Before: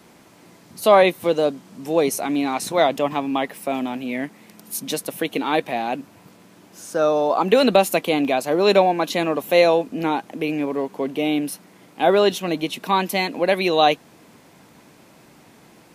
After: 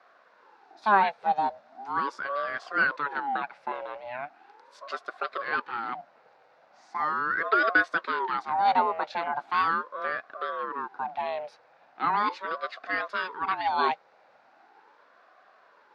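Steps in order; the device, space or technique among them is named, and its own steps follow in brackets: voice changer toy (ring modulator with a swept carrier 600 Hz, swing 50%, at 0.39 Hz; speaker cabinet 410–4300 Hz, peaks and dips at 810 Hz +9 dB, 1500 Hz +7 dB, 3100 Hz -8 dB); gain -7.5 dB

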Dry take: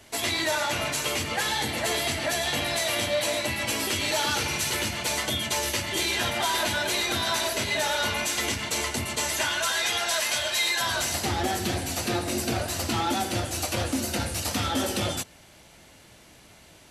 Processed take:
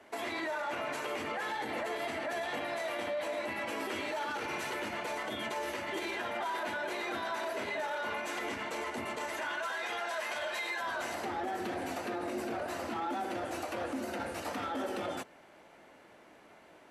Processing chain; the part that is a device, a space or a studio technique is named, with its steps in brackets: DJ mixer with the lows and highs turned down (three-band isolator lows -20 dB, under 240 Hz, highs -18 dB, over 2100 Hz; limiter -28 dBFS, peak gain reduction 10.5 dB)

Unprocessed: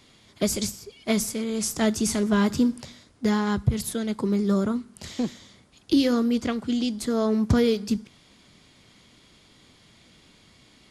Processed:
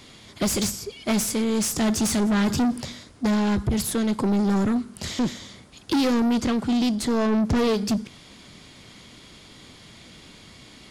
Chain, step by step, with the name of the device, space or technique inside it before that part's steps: saturation between pre-emphasis and de-emphasis (high shelf 8400 Hz +9.5 dB; soft clip -27 dBFS, distortion -7 dB; high shelf 8400 Hz -9.5 dB); 6.95–7.77 high shelf 8600 Hz -5 dB; gain +8.5 dB

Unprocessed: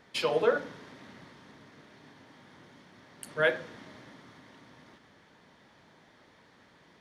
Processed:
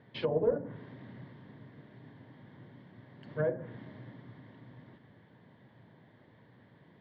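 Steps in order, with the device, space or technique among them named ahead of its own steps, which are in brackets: guitar amplifier (tube stage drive 16 dB, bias 0.35; tone controls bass +6 dB, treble -15 dB; speaker cabinet 91–4000 Hz, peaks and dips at 120 Hz +10 dB, 830 Hz -3 dB, 1300 Hz -10 dB, 2500 Hz -8 dB); treble ducked by the level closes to 700 Hz, closed at -26.5 dBFS

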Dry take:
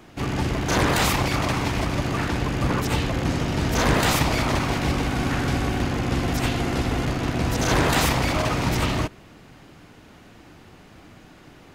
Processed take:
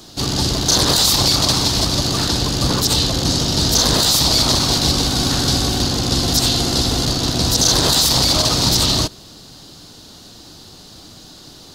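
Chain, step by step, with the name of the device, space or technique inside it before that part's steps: over-bright horn tweeter (resonant high shelf 3100 Hz +11 dB, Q 3; limiter -8.5 dBFS, peak gain reduction 9.5 dB); gain +4 dB

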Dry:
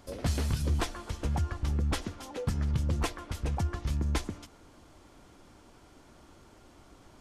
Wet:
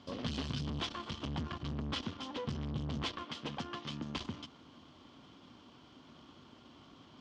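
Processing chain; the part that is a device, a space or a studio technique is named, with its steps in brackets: 3.23–4.16 HPF 250 Hz 12 dB/oct; guitar amplifier (tube stage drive 37 dB, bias 0.8; tone controls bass +4 dB, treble +12 dB; speaker cabinet 110–4400 Hz, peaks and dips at 150 Hz +4 dB, 250 Hz +8 dB, 1100 Hz +7 dB, 3100 Hz +10 dB)

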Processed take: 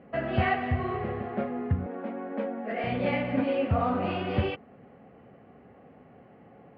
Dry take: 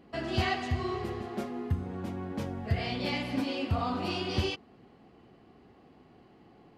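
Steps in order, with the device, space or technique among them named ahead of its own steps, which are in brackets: bass cabinet (speaker cabinet 85–2300 Hz, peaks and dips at 340 Hz -9 dB, 540 Hz +7 dB, 1000 Hz -5 dB); 1.86–2.84 elliptic high-pass 220 Hz; gain +5.5 dB

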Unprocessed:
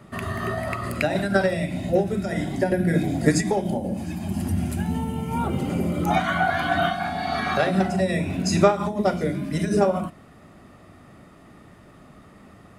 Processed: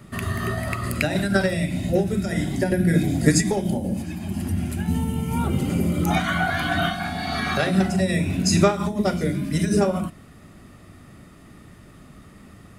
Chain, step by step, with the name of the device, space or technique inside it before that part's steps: smiley-face EQ (low shelf 98 Hz +5.5 dB; bell 740 Hz -6 dB 1.5 oct; high shelf 5500 Hz +6 dB); 4.02–4.88 tone controls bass -5 dB, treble -7 dB; gain +2 dB

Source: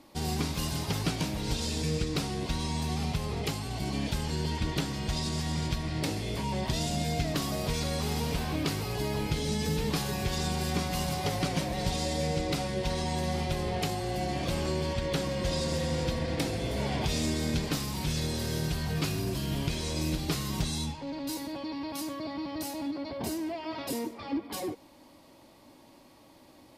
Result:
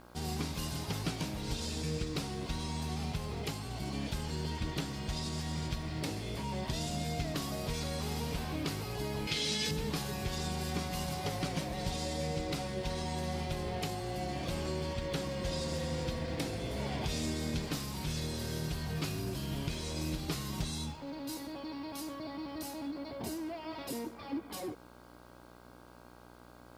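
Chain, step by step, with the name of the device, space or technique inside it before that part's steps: video cassette with head-switching buzz (buzz 60 Hz, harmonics 27, -51 dBFS -2 dB/oct; white noise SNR 37 dB); 9.27–9.71 weighting filter D; gain -5.5 dB

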